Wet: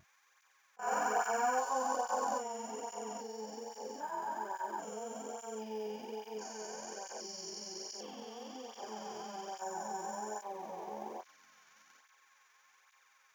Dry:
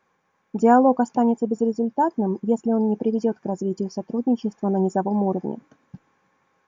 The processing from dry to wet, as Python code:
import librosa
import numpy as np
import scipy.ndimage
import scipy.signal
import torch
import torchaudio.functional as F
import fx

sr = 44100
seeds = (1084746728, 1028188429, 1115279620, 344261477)

p1 = fx.spec_steps(x, sr, hold_ms=400)
p2 = scipy.signal.sosfilt(scipy.signal.butter(2, 1500.0, 'highpass', fs=sr, output='sos'), p1)
p3 = fx.high_shelf(p2, sr, hz=5400.0, db=12.0)
p4 = fx.level_steps(p3, sr, step_db=14)
p5 = p3 + F.gain(torch.from_numpy(p4), -3.0).numpy()
p6 = fx.vibrato(p5, sr, rate_hz=0.47, depth_cents=12.0)
p7 = fx.quant_float(p6, sr, bits=4)
p8 = fx.stretch_grains(p7, sr, factor=2.0, grain_ms=93.0)
p9 = fx.auto_swell(p8, sr, attack_ms=177.0)
p10 = fx.doubler(p9, sr, ms=14.0, db=-11.0)
p11 = fx.flanger_cancel(p10, sr, hz=1.2, depth_ms=3.9)
y = F.gain(torch.from_numpy(p11), 7.0).numpy()